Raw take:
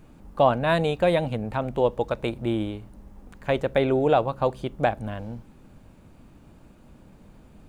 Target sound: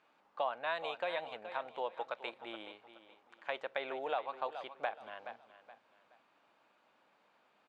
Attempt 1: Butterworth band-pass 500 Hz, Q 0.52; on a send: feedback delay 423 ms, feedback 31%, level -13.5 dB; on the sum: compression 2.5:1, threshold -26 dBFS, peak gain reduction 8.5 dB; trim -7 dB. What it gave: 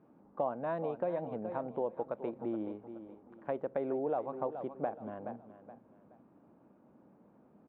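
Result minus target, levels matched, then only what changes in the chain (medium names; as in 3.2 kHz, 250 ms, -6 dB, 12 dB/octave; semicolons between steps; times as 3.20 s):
2 kHz band -13.5 dB
change: Butterworth band-pass 1.8 kHz, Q 0.52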